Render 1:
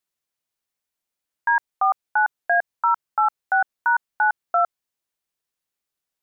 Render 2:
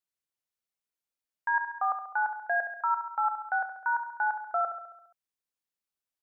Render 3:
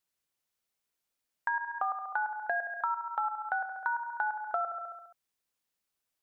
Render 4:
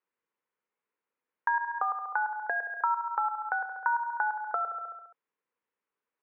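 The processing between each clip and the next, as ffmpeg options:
-af "aecho=1:1:68|136|204|272|340|408|476:0.355|0.213|0.128|0.0766|0.046|0.0276|0.0166,volume=0.355"
-af "acompressor=threshold=0.0158:ratio=5,volume=2"
-af "highpass=210,equalizer=f=460:t=q:w=4:g=8,equalizer=f=680:t=q:w=4:g=-7,equalizer=f=1000:t=q:w=4:g=5,lowpass=f=2300:w=0.5412,lowpass=f=2300:w=1.3066,volume=1.26"

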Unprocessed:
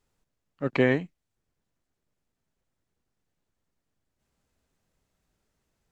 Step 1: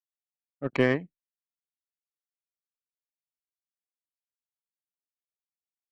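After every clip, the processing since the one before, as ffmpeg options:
-af "afftdn=nr=17:nf=-42,aeval=exprs='0.316*(cos(1*acos(clip(val(0)/0.316,-1,1)))-cos(1*PI/2))+0.0251*(cos(3*acos(clip(val(0)/0.316,-1,1)))-cos(3*PI/2))+0.01*(cos(7*acos(clip(val(0)/0.316,-1,1)))-cos(7*PI/2))':c=same,agate=range=0.0224:threshold=0.00501:ratio=3:detection=peak"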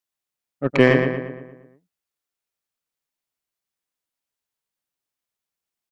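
-filter_complex "[0:a]asplit=2[s0][s1];[s1]adelay=116,lowpass=f=3000:p=1,volume=0.562,asplit=2[s2][s3];[s3]adelay=116,lowpass=f=3000:p=1,volume=0.53,asplit=2[s4][s5];[s5]adelay=116,lowpass=f=3000:p=1,volume=0.53,asplit=2[s6][s7];[s7]adelay=116,lowpass=f=3000:p=1,volume=0.53,asplit=2[s8][s9];[s9]adelay=116,lowpass=f=3000:p=1,volume=0.53,asplit=2[s10][s11];[s11]adelay=116,lowpass=f=3000:p=1,volume=0.53,asplit=2[s12][s13];[s13]adelay=116,lowpass=f=3000:p=1,volume=0.53[s14];[s0][s2][s4][s6][s8][s10][s12][s14]amix=inputs=8:normalize=0,volume=2.66"

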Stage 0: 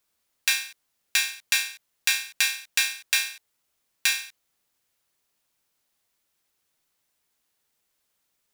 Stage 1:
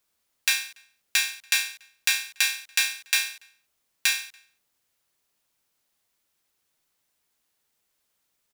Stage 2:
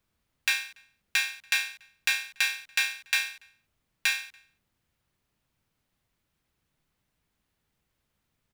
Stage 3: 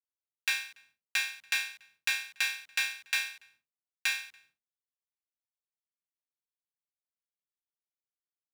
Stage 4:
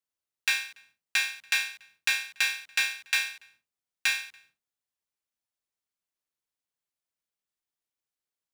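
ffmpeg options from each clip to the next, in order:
-filter_complex "[0:a]asplit=2[s0][s1];[s1]adelay=285.7,volume=0.0355,highshelf=f=4000:g=-6.43[s2];[s0][s2]amix=inputs=2:normalize=0"
-af "bass=f=250:g=15,treble=f=4000:g=-9"
-filter_complex "[0:a]highpass=f=240:p=1,agate=range=0.0224:threshold=0.00112:ratio=3:detection=peak,asplit=2[s0][s1];[s1]asoftclip=type=tanh:threshold=0.0841,volume=0.631[s2];[s0][s2]amix=inputs=2:normalize=0,volume=0.447"
-filter_complex "[0:a]equalizer=f=15000:w=2:g=-5.5,asplit=2[s0][s1];[s1]acrusher=bits=3:mode=log:mix=0:aa=0.000001,volume=0.562[s2];[s0][s2]amix=inputs=2:normalize=0"

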